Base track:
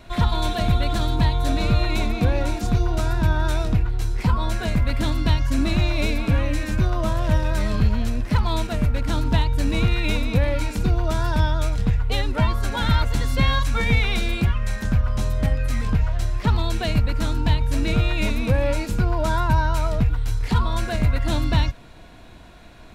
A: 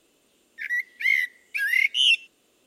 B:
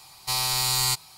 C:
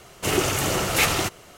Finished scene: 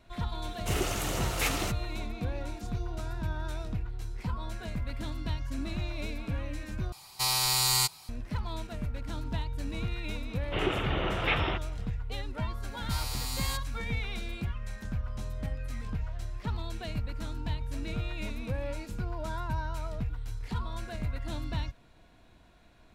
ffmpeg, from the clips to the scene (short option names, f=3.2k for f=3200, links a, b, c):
-filter_complex "[3:a]asplit=2[a][b];[2:a]asplit=2[c][d];[0:a]volume=-14dB[e];[b]aresample=8000,aresample=44100[f];[d]asoftclip=type=hard:threshold=-17dB[g];[e]asplit=2[h][i];[h]atrim=end=6.924[j];[c]atrim=end=1.17,asetpts=PTS-STARTPTS,volume=-2dB[k];[i]atrim=start=8.086[l];[a]atrim=end=1.57,asetpts=PTS-STARTPTS,volume=-10dB,afade=t=in:d=0.004:c=hsin,afade=t=out:st=1.566:d=0.004:c=hsin,adelay=430[m];[f]atrim=end=1.57,asetpts=PTS-STARTPTS,volume=-7dB,afade=t=in:d=0.004:c=hsin,afade=t=out:st=1.566:d=0.004:c=hsin,adelay=10290[n];[g]atrim=end=1.17,asetpts=PTS-STARTPTS,volume=-13dB,afade=t=in:d=0.004:c=hsin,afade=t=out:st=1.166:d=0.004:c=hsin,adelay=12620[o];[j][k]acrossfade=d=0.004:c1=hsin:c2=hsin[p];[p][l]acrossfade=d=0.004:c1=hsin:c2=hsin[q];[q][m][n][o]amix=inputs=4:normalize=0"